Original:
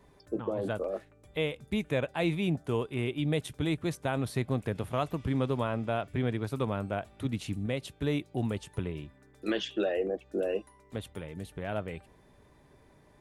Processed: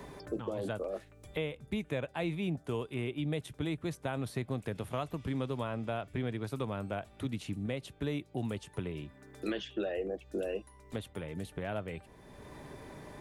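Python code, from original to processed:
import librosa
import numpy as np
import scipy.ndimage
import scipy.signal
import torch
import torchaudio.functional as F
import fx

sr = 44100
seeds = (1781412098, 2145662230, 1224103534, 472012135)

y = fx.band_squash(x, sr, depth_pct=70)
y = y * librosa.db_to_amplitude(-5.0)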